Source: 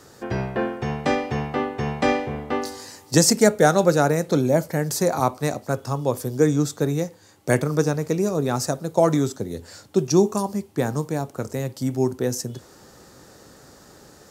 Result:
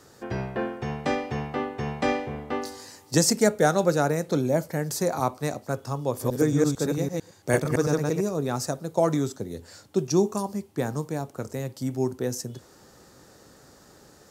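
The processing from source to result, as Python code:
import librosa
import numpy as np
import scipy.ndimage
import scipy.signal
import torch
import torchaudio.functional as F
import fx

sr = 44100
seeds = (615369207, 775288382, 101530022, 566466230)

y = fx.reverse_delay(x, sr, ms=112, wet_db=-0.5, at=(6.08, 8.21))
y = y * 10.0 ** (-4.5 / 20.0)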